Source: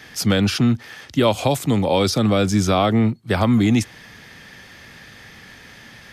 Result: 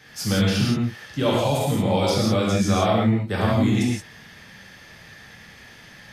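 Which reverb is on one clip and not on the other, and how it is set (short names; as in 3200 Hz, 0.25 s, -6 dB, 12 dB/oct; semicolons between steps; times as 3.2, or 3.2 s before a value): non-linear reverb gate 0.2 s flat, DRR -5.5 dB; gain -9 dB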